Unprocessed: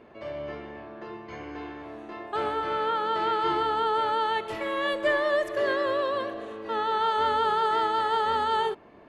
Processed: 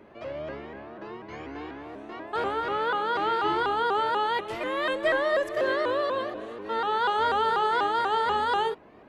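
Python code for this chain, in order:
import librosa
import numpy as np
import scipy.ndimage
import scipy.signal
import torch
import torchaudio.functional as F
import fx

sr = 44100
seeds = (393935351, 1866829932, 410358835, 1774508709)

y = fx.vibrato_shape(x, sr, shape='saw_up', rate_hz=4.1, depth_cents=160.0)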